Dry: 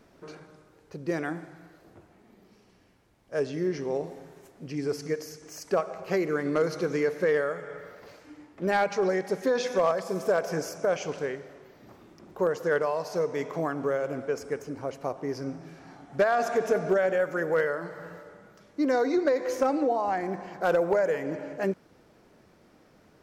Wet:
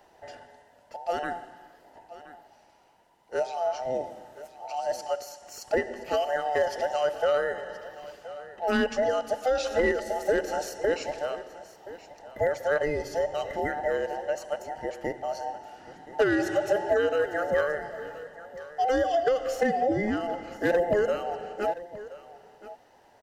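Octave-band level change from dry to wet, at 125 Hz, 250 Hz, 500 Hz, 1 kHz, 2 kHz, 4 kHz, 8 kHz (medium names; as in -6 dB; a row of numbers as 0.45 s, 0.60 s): -5.0 dB, -2.5 dB, 0.0 dB, +2.0 dB, +1.0 dB, +3.5 dB, 0.0 dB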